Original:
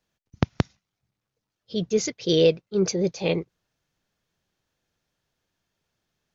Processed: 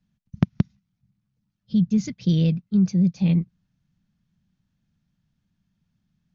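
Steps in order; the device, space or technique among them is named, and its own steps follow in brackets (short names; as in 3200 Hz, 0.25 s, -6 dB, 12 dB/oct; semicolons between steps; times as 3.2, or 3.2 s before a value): jukebox (LPF 6700 Hz; resonant low shelf 290 Hz +13.5 dB, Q 3; compressor 4:1, threshold -12 dBFS, peak gain reduction 13 dB); gain -5 dB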